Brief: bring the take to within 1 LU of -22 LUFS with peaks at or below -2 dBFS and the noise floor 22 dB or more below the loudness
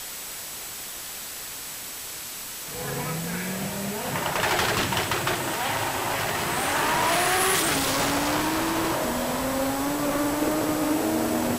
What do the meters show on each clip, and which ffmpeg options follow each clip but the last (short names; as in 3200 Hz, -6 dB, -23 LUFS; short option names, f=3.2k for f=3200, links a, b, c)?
steady tone 7800 Hz; tone level -44 dBFS; noise floor -36 dBFS; noise floor target -48 dBFS; loudness -25.5 LUFS; peak -12.0 dBFS; loudness target -22.0 LUFS
-> -af "bandreject=f=7.8k:w=30"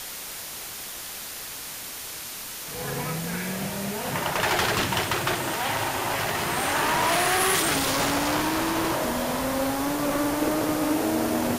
steady tone none; noise floor -37 dBFS; noise floor target -48 dBFS
-> -af "afftdn=nr=11:nf=-37"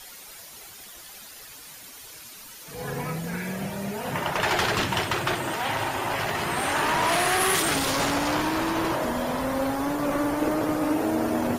noise floor -44 dBFS; noise floor target -48 dBFS
-> -af "afftdn=nr=6:nf=-44"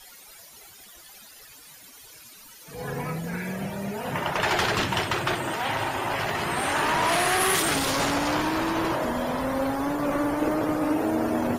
noise floor -49 dBFS; loudness -25.5 LUFS; peak -12.5 dBFS; loudness target -22.0 LUFS
-> -af "volume=3.5dB"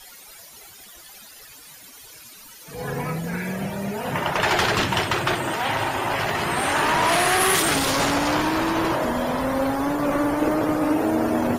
loudness -22.0 LUFS; peak -9.0 dBFS; noise floor -45 dBFS